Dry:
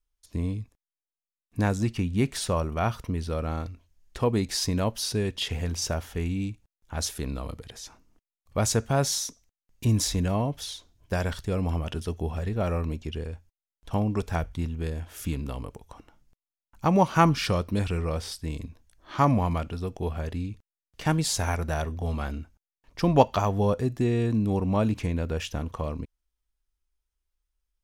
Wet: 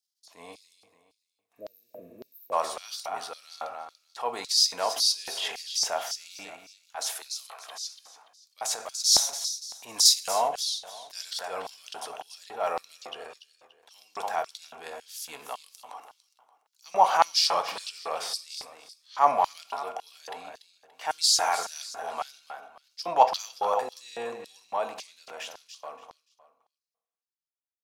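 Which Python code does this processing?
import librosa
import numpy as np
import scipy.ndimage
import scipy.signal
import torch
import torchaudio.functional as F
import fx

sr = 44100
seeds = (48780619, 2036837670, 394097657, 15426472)

p1 = fx.fade_out_tail(x, sr, length_s=4.62)
p2 = fx.over_compress(p1, sr, threshold_db=-28.0, ratio=-0.5, at=(8.59, 9.2))
p3 = fx.low_shelf(p2, sr, hz=380.0, db=-6.0)
p4 = p3 + fx.echo_feedback(p3, sr, ms=288, feedback_pct=30, wet_db=-12.0, dry=0)
p5 = fx.transient(p4, sr, attack_db=-9, sustain_db=4)
p6 = fx.highpass(p5, sr, hz=fx.line((6.96, 230.0), (7.67, 960.0)), slope=24, at=(6.96, 7.67), fade=0.02)
p7 = fx.high_shelf(p6, sr, hz=6200.0, db=10.0, at=(10.05, 10.48))
p8 = fx.rev_fdn(p7, sr, rt60_s=0.9, lf_ratio=0.95, hf_ratio=0.5, size_ms=13.0, drr_db=8.5)
p9 = fx.spec_repair(p8, sr, seeds[0], start_s=1.57, length_s=0.93, low_hz=670.0, high_hz=12000.0, source='before')
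p10 = fx.filter_lfo_highpass(p9, sr, shape='square', hz=1.8, low_hz=780.0, high_hz=4600.0, q=3.1)
y = p10 * librosa.db_to_amplitude(1.5)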